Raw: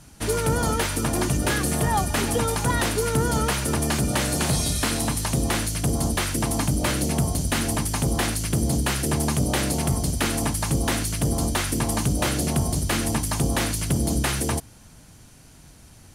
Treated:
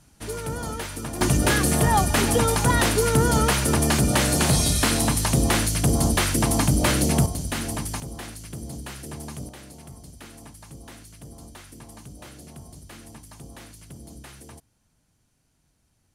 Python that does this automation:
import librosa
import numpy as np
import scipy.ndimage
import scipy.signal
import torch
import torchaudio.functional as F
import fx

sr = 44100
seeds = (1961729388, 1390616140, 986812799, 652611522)

y = fx.gain(x, sr, db=fx.steps((0.0, -8.0), (1.21, 3.0), (7.26, -4.5), (8.0, -13.0), (9.49, -20.0)))